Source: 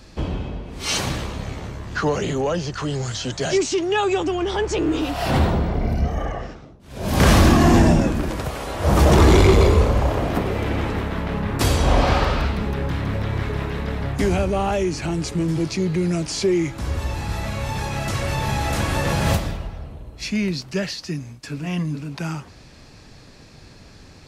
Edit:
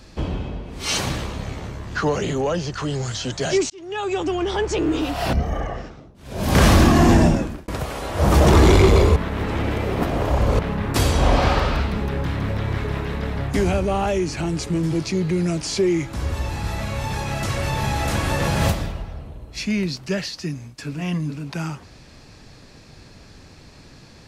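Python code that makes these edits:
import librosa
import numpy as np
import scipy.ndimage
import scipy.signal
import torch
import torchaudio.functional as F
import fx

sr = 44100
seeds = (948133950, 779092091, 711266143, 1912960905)

y = fx.edit(x, sr, fx.fade_in_span(start_s=3.7, length_s=0.62),
    fx.cut(start_s=5.33, length_s=0.65),
    fx.fade_out_span(start_s=7.92, length_s=0.41),
    fx.reverse_span(start_s=9.81, length_s=1.43), tone=tone)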